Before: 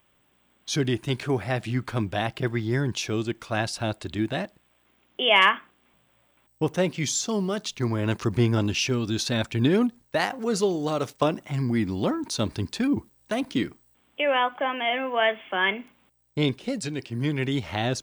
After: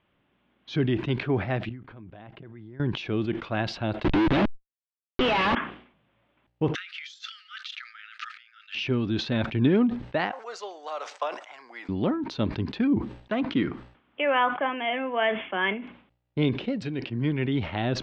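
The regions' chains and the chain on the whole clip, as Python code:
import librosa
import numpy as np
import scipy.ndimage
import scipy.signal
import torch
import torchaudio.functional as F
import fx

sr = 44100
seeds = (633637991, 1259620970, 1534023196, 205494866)

y = fx.chain(x, sr, fx.high_shelf(hz=3200.0, db=-9.5),
    fx.level_steps(step_db=22), at=(1.69, 2.8))
y = fx.chain(y, sr, fx.small_body(hz=(330.0, 840.0, 2600.0, 3700.0), ring_ms=25, db=12),
    fx.schmitt(flips_db=-30.5), at=(4.04, 5.55))
y = fx.chain(y, sr, fx.high_shelf(hz=5300.0, db=10.5),
    fx.over_compress(threshold_db=-29.0, ratio=-0.5),
    fx.brickwall_highpass(low_hz=1200.0), at=(6.75, 8.75))
y = fx.chain(y, sr, fx.highpass(hz=660.0, slope=24),
    fx.high_shelf_res(hz=5000.0, db=12.5, q=1.5), at=(10.32, 11.89))
y = fx.chain(y, sr, fx.quant_companded(bits=8),
    fx.lowpass(hz=9300.0, slope=12),
    fx.peak_eq(hz=1300.0, db=5.5, octaves=0.93), at=(13.32, 14.67))
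y = scipy.signal.sosfilt(scipy.signal.butter(4, 3400.0, 'lowpass', fs=sr, output='sos'), y)
y = fx.peak_eq(y, sr, hz=220.0, db=4.0, octaves=1.9)
y = fx.sustainer(y, sr, db_per_s=110.0)
y = F.gain(torch.from_numpy(y), -3.0).numpy()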